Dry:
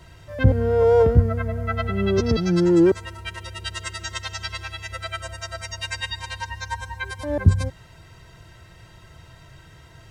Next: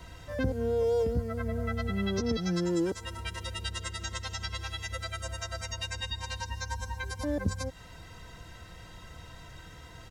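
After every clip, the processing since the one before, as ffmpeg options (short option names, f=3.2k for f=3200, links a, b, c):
-filter_complex "[0:a]aecho=1:1:4:0.48,acrossover=split=470|3700[a][b][c];[a]acompressor=threshold=-30dB:ratio=4[d];[b]acompressor=threshold=-39dB:ratio=4[e];[c]acompressor=threshold=-40dB:ratio=4[f];[d][e][f]amix=inputs=3:normalize=0"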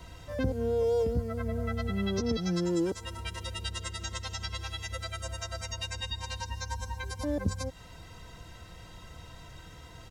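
-af "equalizer=f=1.7k:t=o:w=0.5:g=-4"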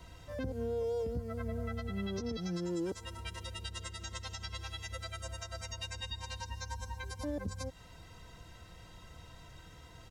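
-af "alimiter=limit=-23.5dB:level=0:latency=1:release=115,volume=-5dB"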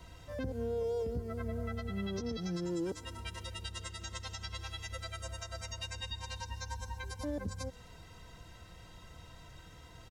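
-filter_complex "[0:a]asplit=6[a][b][c][d][e][f];[b]adelay=128,afreqshift=-33,volume=-22.5dB[g];[c]adelay=256,afreqshift=-66,volume=-26.5dB[h];[d]adelay=384,afreqshift=-99,volume=-30.5dB[i];[e]adelay=512,afreqshift=-132,volume=-34.5dB[j];[f]adelay=640,afreqshift=-165,volume=-38.6dB[k];[a][g][h][i][j][k]amix=inputs=6:normalize=0"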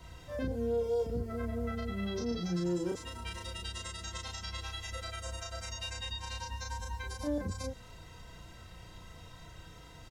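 -filter_complex "[0:a]asplit=2[a][b];[b]adelay=34,volume=-2dB[c];[a][c]amix=inputs=2:normalize=0"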